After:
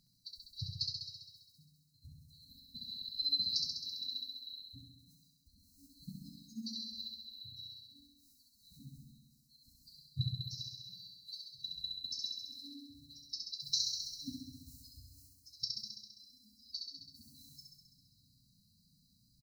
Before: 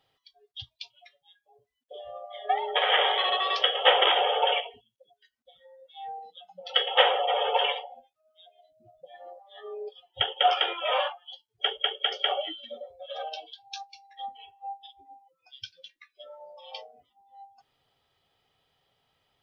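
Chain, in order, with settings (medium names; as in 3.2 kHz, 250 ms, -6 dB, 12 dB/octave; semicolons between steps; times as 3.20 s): spectral selection erased 2.05–4.42 s, 390–1600 Hz; formant-preserving pitch shift +3.5 st; FFT band-reject 280–3900 Hz; doubling 32 ms -12.5 dB; flutter echo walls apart 11.4 m, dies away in 1.3 s; trim +8 dB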